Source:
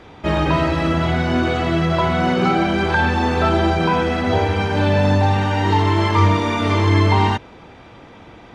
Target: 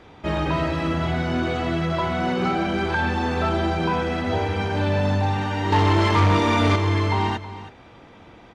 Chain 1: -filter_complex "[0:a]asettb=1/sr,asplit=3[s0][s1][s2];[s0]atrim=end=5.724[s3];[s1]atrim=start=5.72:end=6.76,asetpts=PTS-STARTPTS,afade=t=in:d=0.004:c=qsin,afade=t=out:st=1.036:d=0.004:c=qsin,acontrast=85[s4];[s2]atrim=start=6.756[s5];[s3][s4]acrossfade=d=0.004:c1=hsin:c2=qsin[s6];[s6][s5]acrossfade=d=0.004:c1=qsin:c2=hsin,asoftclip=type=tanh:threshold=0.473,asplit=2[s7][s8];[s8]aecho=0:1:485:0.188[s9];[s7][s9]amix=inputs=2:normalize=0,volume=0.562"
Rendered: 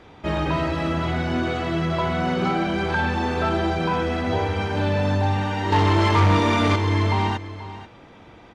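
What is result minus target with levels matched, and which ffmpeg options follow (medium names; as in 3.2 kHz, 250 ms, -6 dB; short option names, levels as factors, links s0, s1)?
echo 163 ms late
-filter_complex "[0:a]asettb=1/sr,asplit=3[s0][s1][s2];[s0]atrim=end=5.724[s3];[s1]atrim=start=5.72:end=6.76,asetpts=PTS-STARTPTS,afade=t=in:d=0.004:c=qsin,afade=t=out:st=1.036:d=0.004:c=qsin,acontrast=85[s4];[s2]atrim=start=6.756[s5];[s3][s4]acrossfade=d=0.004:c1=hsin:c2=qsin[s6];[s6][s5]acrossfade=d=0.004:c1=qsin:c2=hsin,asoftclip=type=tanh:threshold=0.473,asplit=2[s7][s8];[s8]aecho=0:1:322:0.188[s9];[s7][s9]amix=inputs=2:normalize=0,volume=0.562"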